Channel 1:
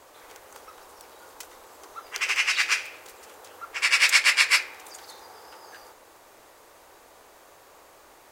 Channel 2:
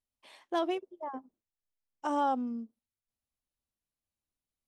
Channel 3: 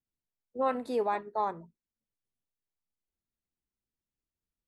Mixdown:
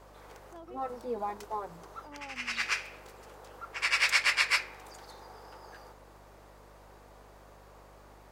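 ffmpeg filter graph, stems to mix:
ffmpeg -i stem1.wav -i stem2.wav -i stem3.wav -filter_complex "[0:a]equalizer=frequency=4800:width_type=o:width=0.62:gain=3,volume=-1dB[link_01];[1:a]volume=-17.5dB,asplit=2[link_02][link_03];[2:a]asplit=2[link_04][link_05];[link_05]adelay=5.3,afreqshift=0.77[link_06];[link_04][link_06]amix=inputs=2:normalize=1,adelay=150,volume=-1.5dB[link_07];[link_03]apad=whole_len=366832[link_08];[link_01][link_08]sidechaincompress=threshold=-54dB:ratio=8:attack=23:release=239[link_09];[link_09][link_02][link_07]amix=inputs=3:normalize=0,highshelf=frequency=2100:gain=-11,aeval=exprs='val(0)+0.00141*(sin(2*PI*50*n/s)+sin(2*PI*2*50*n/s)/2+sin(2*PI*3*50*n/s)/3+sin(2*PI*4*50*n/s)/4+sin(2*PI*5*50*n/s)/5)':channel_layout=same" out.wav

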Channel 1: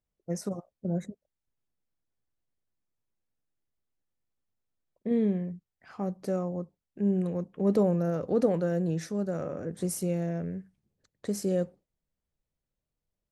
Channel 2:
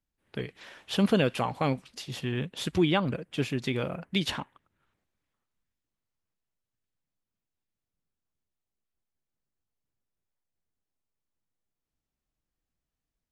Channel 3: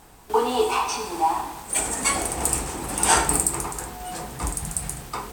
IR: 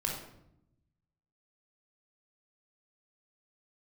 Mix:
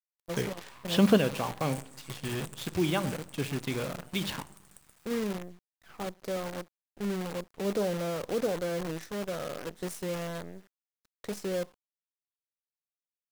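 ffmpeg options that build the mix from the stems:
-filter_complex "[0:a]asplit=2[link_01][link_02];[link_02]highpass=frequency=720:poles=1,volume=13dB,asoftclip=type=tanh:threshold=-13dB[link_03];[link_01][link_03]amix=inputs=2:normalize=0,lowpass=frequency=4500:poles=1,volume=-6dB,volume=-6dB,asplit=2[link_04][link_05];[1:a]volume=2dB,asplit=2[link_06][link_07];[link_07]volume=-21dB[link_08];[2:a]lowshelf=frequency=790:width_type=q:width=1.5:gain=-12,acompressor=threshold=-30dB:ratio=6,volume=-19dB,asplit=2[link_09][link_10];[link_10]volume=-19dB[link_11];[link_05]apad=whole_len=587300[link_12];[link_06][link_12]sidechaingate=range=-7dB:threshold=-51dB:ratio=16:detection=peak[link_13];[3:a]atrim=start_sample=2205[link_14];[link_08][link_11]amix=inputs=2:normalize=0[link_15];[link_15][link_14]afir=irnorm=-1:irlink=0[link_16];[link_04][link_13][link_09][link_16]amix=inputs=4:normalize=0,highshelf=frequency=3100:gain=-2.5,acrusher=bits=7:dc=4:mix=0:aa=0.000001"

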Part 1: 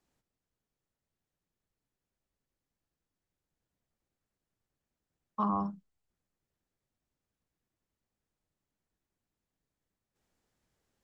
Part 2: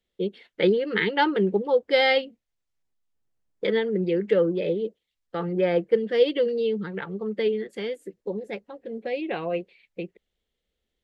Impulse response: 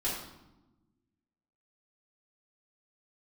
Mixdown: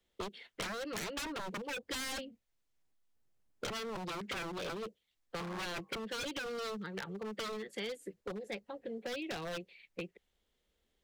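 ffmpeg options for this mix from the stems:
-filter_complex "[0:a]highpass=260,volume=-7.5dB,asplit=2[link_01][link_02];[link_02]volume=-14.5dB[link_03];[1:a]volume=0.5dB[link_04];[2:a]atrim=start_sample=2205[link_05];[link_03][link_05]afir=irnorm=-1:irlink=0[link_06];[link_01][link_04][link_06]amix=inputs=3:normalize=0,aeval=exprs='0.0631*(abs(mod(val(0)/0.0631+3,4)-2)-1)':channel_layout=same,acrossover=split=220|530|3000[link_07][link_08][link_09][link_10];[link_07]acompressor=threshold=-48dB:ratio=4[link_11];[link_08]acompressor=threshold=-52dB:ratio=4[link_12];[link_09]acompressor=threshold=-44dB:ratio=4[link_13];[link_10]acompressor=threshold=-43dB:ratio=4[link_14];[link_11][link_12][link_13][link_14]amix=inputs=4:normalize=0"

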